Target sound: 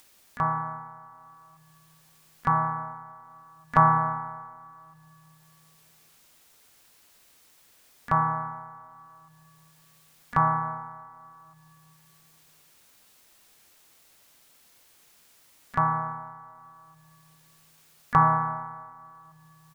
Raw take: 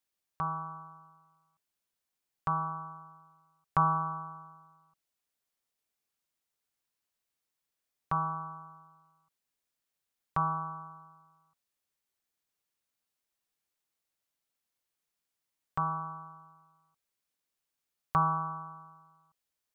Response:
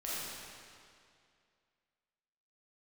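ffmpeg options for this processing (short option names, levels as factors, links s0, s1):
-filter_complex "[0:a]asplit=3[s0][s1][s2];[s1]asetrate=35002,aresample=44100,atempo=1.25992,volume=0.282[s3];[s2]asetrate=66075,aresample=44100,atempo=0.66742,volume=0.158[s4];[s0][s3][s4]amix=inputs=3:normalize=0,asplit=2[s5][s6];[1:a]atrim=start_sample=2205[s7];[s6][s7]afir=irnorm=-1:irlink=0,volume=0.0631[s8];[s5][s8]amix=inputs=2:normalize=0,acompressor=mode=upward:threshold=0.00355:ratio=2.5,volume=2.24"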